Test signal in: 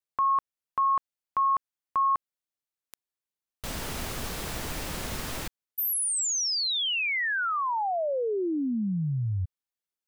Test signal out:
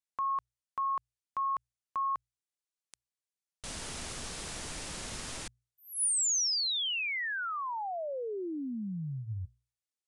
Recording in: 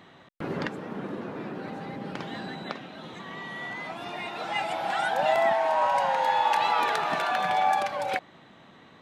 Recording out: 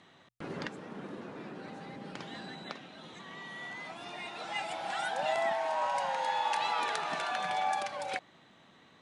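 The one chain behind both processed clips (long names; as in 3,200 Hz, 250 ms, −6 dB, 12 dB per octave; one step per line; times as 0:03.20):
Chebyshev low-pass filter 10,000 Hz, order 5
high-shelf EQ 2,900 Hz +9 dB
mains-hum notches 60/120 Hz
level −8.5 dB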